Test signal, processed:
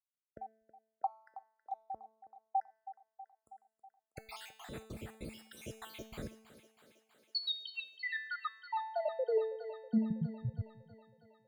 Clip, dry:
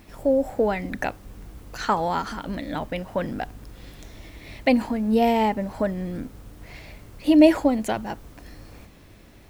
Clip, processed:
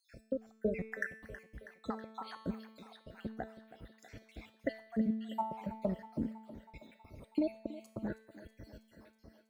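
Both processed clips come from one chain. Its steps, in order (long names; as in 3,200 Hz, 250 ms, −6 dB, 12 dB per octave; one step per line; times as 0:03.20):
time-frequency cells dropped at random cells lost 72%
high-pass filter 46 Hz 24 dB per octave
high-shelf EQ 3,300 Hz −9 dB
downward compressor 6 to 1, threshold −27 dBFS
gate pattern "xx.xx.xx." 147 BPM −60 dB
tuned comb filter 220 Hz, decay 0.78 s, mix 80%
rotating-speaker cabinet horn 0.65 Hz
feedback echo with a high-pass in the loop 322 ms, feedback 70%, high-pass 260 Hz, level −14.5 dB
level +11 dB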